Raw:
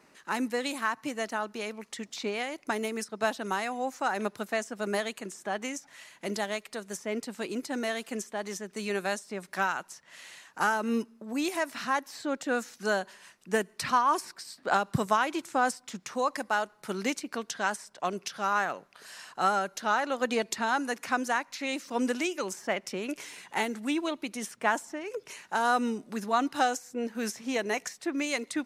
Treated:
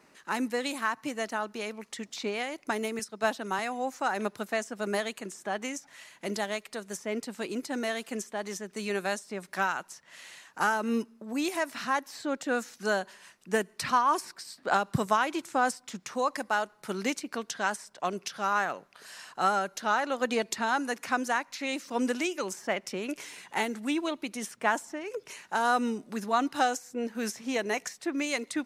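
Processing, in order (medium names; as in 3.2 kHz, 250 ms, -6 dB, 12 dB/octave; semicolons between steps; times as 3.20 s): 2.99–3.59 s: three bands expanded up and down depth 40%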